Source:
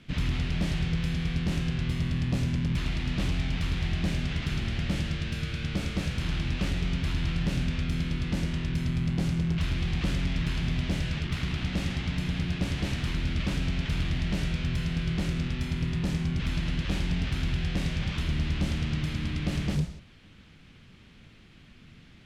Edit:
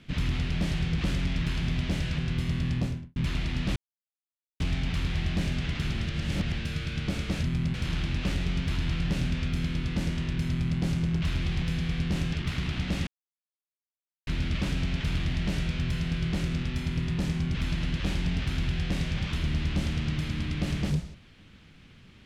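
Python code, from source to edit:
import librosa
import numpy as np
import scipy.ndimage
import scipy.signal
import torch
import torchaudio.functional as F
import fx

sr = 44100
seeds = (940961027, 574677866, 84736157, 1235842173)

y = fx.studio_fade_out(x, sr, start_s=2.25, length_s=0.42)
y = fx.edit(y, sr, fx.swap(start_s=0.98, length_s=0.71, other_s=9.98, other_length_s=1.2),
    fx.insert_silence(at_s=3.27, length_s=0.84),
    fx.reverse_span(start_s=4.73, length_s=0.52),
    fx.duplicate(start_s=8.85, length_s=0.31, to_s=6.1),
    fx.silence(start_s=11.92, length_s=1.2), tone=tone)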